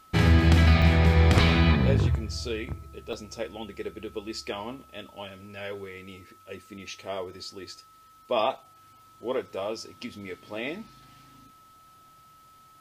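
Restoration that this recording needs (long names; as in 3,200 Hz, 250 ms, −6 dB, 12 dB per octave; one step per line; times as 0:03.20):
notch filter 1,300 Hz, Q 30
repair the gap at 0:00.82/0:03.13, 3.3 ms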